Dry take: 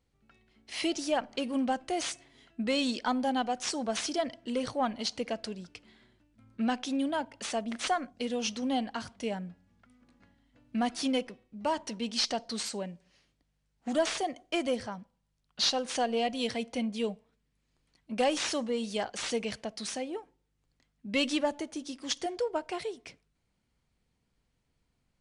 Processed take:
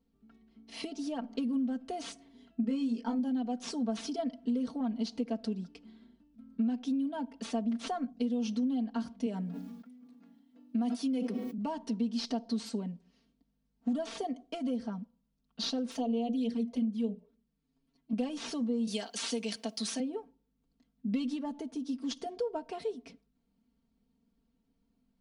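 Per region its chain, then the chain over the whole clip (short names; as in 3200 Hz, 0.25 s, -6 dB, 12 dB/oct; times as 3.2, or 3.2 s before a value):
2.61–3.19 bell 3800 Hz -12 dB 0.3 oct + doubler 22 ms -3 dB
9.26–11.58 HPF 230 Hz + high shelf 8700 Hz +9.5 dB + sustainer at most 50 dB/s
15.91–18.13 notches 60/120/180/240/300/360/420/480/540/600 Hz + envelope flanger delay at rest 7.6 ms, full sweep at -27.5 dBFS
18.87–20 tilt +3.5 dB/oct + three-band squash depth 70%
whole clip: ten-band EQ 250 Hz +12 dB, 2000 Hz -7 dB, 8000 Hz -8 dB; compressor 6:1, threshold -28 dBFS; comb 4.4 ms, depth 84%; gain -5.5 dB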